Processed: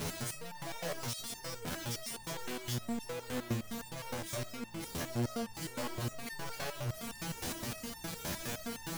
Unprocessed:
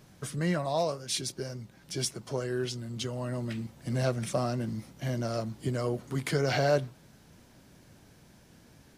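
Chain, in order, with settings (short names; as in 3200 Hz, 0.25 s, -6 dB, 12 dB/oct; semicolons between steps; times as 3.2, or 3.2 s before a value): infinite clipping; stepped resonator 9.7 Hz 84–900 Hz; gain +5.5 dB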